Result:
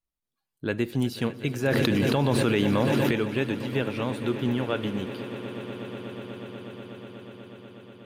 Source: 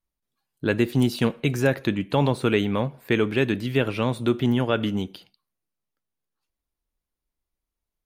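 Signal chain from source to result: echo with a slow build-up 122 ms, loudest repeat 8, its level -17.5 dB; 1.68–3.11 s: level flattener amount 100%; trim -5.5 dB

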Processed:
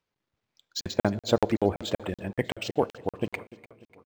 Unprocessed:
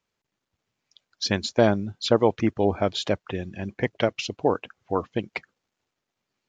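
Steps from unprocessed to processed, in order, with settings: tempo 1.6×; feedback delay 296 ms, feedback 55%, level -19.5 dB; on a send at -17.5 dB: reverberation RT60 1.9 s, pre-delay 6 ms; on the sum: crackling interface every 0.19 s, samples 2048, zero, from 0.81 s; decimation joined by straight lines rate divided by 4×; trim -1.5 dB

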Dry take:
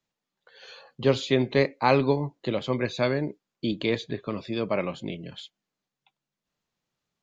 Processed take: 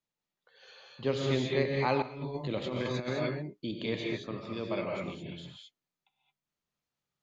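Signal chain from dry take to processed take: gated-style reverb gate 240 ms rising, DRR -1 dB; 2.02–3.13 s: compressor with a negative ratio -25 dBFS, ratio -0.5; trim -9 dB

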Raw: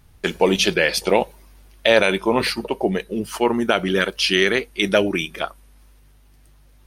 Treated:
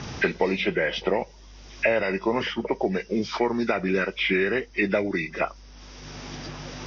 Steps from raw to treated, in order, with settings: knee-point frequency compression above 1.4 kHz 1.5:1; Chebyshev low-pass 5.9 kHz, order 5; three bands compressed up and down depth 100%; trim -5 dB

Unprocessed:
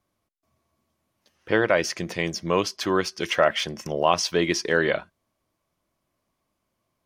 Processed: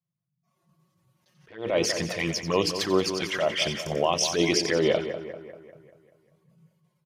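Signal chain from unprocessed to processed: band noise 89–170 Hz -58 dBFS; bass shelf 130 Hz -4.5 dB; hum notches 60/120/180/240/300/360/420/480 Hz; peak limiter -14 dBFS, peak gain reduction 8.5 dB; level rider gain up to 5.5 dB; touch-sensitive flanger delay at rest 5.8 ms, full sweep at -16.5 dBFS; spectral noise reduction 19 dB; on a send: two-band feedback delay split 2.1 kHz, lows 196 ms, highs 90 ms, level -10 dB; on the sum: resampled via 32 kHz; attacks held to a fixed rise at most 140 dB/s

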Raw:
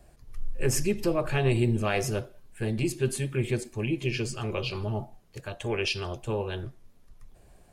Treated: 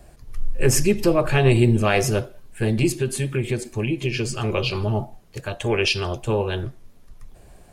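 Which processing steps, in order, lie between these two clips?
2.93–4.44 s: compression 4:1, threshold -28 dBFS, peak gain reduction 7 dB; trim +8 dB

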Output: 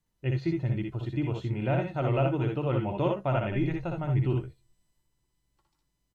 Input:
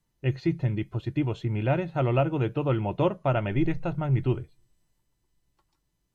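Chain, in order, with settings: early reflections 61 ms -4 dB, 76 ms -8.5 dB; trim -4 dB

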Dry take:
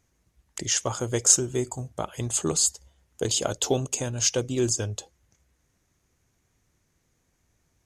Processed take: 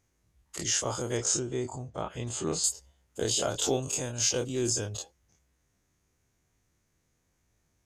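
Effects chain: every event in the spectrogram widened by 60 ms; 1.17–2.64 s: distance through air 87 m; trim -7.5 dB

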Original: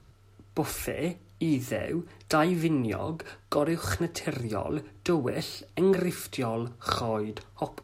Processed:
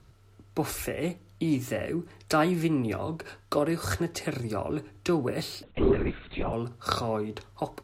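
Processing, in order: 5.63–6.53 s: LPC vocoder at 8 kHz whisper

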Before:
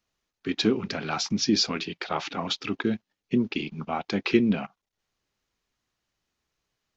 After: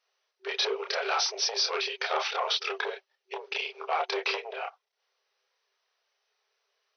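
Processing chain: chorus voices 6, 0.52 Hz, delay 29 ms, depth 4 ms; compression 12:1, threshold -27 dBFS, peak gain reduction 9.5 dB; Chebyshev shaper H 4 -16 dB, 5 -8 dB, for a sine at -17 dBFS; FFT band-pass 380–6200 Hz; trim -1.5 dB

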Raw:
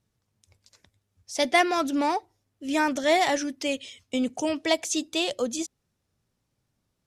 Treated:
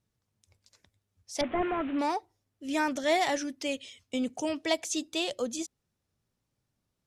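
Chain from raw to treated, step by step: 1.41–1.99 s: one-bit delta coder 16 kbps, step -33 dBFS; trim -4.5 dB

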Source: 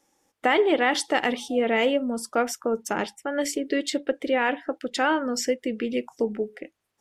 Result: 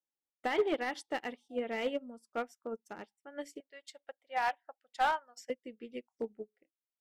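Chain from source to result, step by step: 3.60–5.50 s: resonant low shelf 510 Hz -13.5 dB, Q 3; overload inside the chain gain 15 dB; upward expansion 2.5:1, over -37 dBFS; trim -6 dB

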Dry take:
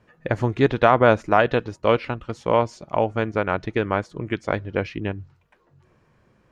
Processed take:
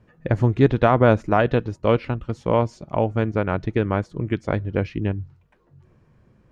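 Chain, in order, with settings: bass shelf 350 Hz +11 dB; trim -4 dB

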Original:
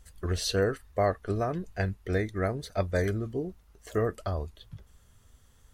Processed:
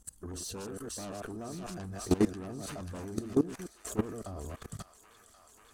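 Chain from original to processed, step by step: chunks repeated in reverse 111 ms, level -8 dB; sine folder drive 9 dB, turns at -14 dBFS; graphic EQ 125/250/500/2000/4000/8000 Hz -3/+7/-6/-12/-7/+7 dB; gate -37 dBFS, range -8 dB; bass shelf 84 Hz -10.5 dB; feedback echo behind a high-pass 540 ms, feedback 60%, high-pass 1.5 kHz, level -5 dB; level held to a coarse grid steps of 19 dB; trim -2.5 dB

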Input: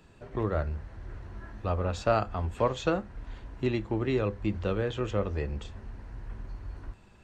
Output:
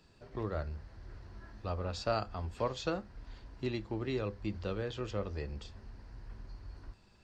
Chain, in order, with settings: peaking EQ 4.8 kHz +12.5 dB 0.53 oct; trim -7.5 dB

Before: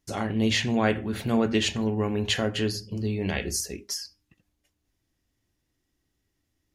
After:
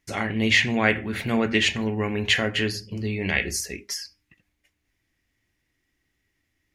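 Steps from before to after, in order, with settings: peaking EQ 2.1 kHz +12.5 dB 0.82 oct

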